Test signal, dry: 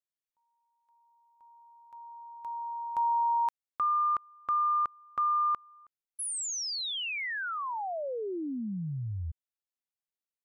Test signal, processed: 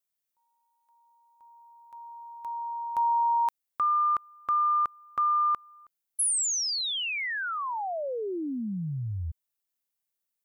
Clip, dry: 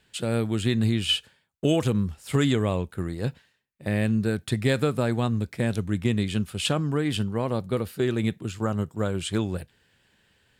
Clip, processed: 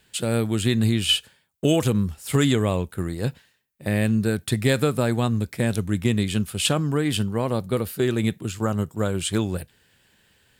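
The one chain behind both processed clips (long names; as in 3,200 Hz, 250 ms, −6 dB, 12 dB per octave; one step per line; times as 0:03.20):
high-shelf EQ 8,800 Hz +11.5 dB
level +2.5 dB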